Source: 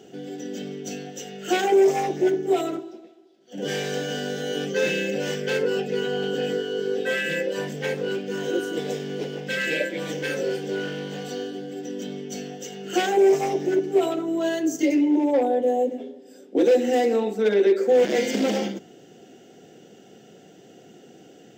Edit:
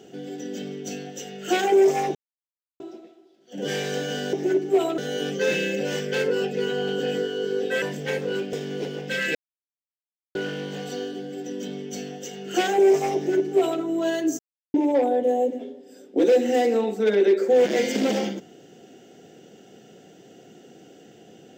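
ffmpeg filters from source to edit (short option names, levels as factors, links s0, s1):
-filter_complex "[0:a]asplit=11[s0][s1][s2][s3][s4][s5][s6][s7][s8][s9][s10];[s0]atrim=end=2.15,asetpts=PTS-STARTPTS,afade=t=out:st=2.146:d=0.004:c=hsin[s11];[s1]atrim=start=2.15:end=2.8,asetpts=PTS-STARTPTS,volume=0[s12];[s2]atrim=start=2.8:end=4.332,asetpts=PTS-STARTPTS,afade=t=in:d=0.004:c=hsin[s13];[s3]atrim=start=13.548:end=14.202[s14];[s4]atrim=start=4.328:end=7.172[s15];[s5]atrim=start=7.578:end=8.292[s16];[s6]atrim=start=8.918:end=9.74,asetpts=PTS-STARTPTS,afade=t=out:st=0.818:d=0.004:c=hsin[s17];[s7]atrim=start=9.74:end=10.74,asetpts=PTS-STARTPTS,volume=0[s18];[s8]atrim=start=10.74:end=14.78,asetpts=PTS-STARTPTS,afade=t=in:d=0.004:c=hsin,afade=t=out:st=4.036:d=0.004:c=hsin[s19];[s9]atrim=start=14.78:end=15.13,asetpts=PTS-STARTPTS,volume=0[s20];[s10]atrim=start=15.13,asetpts=PTS-STARTPTS,afade=t=in:d=0.004:c=hsin[s21];[s11][s12][s13]concat=n=3:v=0:a=1[s22];[s22][s14]acrossfade=d=0.004:c1=hsin:c2=hsin[s23];[s23][s15]acrossfade=d=0.004:c1=hsin:c2=hsin[s24];[s24][s16]acrossfade=d=0.004:c1=hsin:c2=hsin[s25];[s17][s18][s19][s20][s21]concat=n=5:v=0:a=1[s26];[s25][s26]acrossfade=d=0.004:c1=hsin:c2=hsin"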